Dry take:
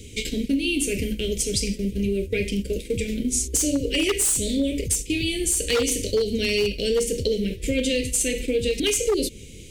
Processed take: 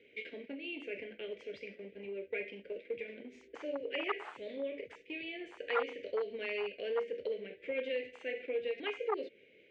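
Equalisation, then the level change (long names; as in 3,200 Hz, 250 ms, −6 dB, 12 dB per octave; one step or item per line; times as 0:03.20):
high-pass with resonance 810 Hz, resonance Q 2
low-pass filter 2,000 Hz 24 dB per octave
−5.0 dB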